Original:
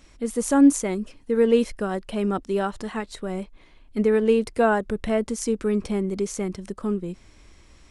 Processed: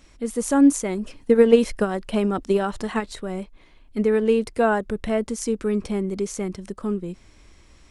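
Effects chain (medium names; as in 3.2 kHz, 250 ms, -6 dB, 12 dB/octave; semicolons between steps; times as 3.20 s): 0.95–3.21 s: transient shaper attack +9 dB, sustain +5 dB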